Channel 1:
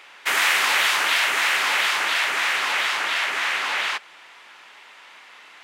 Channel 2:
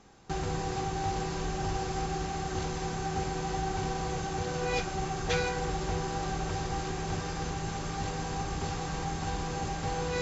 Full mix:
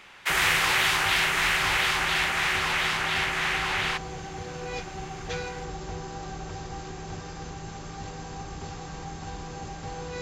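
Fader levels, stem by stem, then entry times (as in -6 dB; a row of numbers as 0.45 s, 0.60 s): -3.5 dB, -4.0 dB; 0.00 s, 0.00 s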